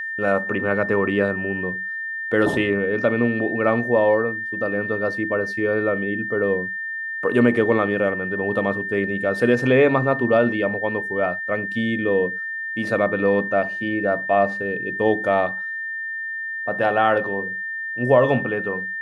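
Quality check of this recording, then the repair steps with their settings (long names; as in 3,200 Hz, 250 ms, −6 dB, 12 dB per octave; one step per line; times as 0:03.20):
whistle 1,800 Hz −26 dBFS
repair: notch filter 1,800 Hz, Q 30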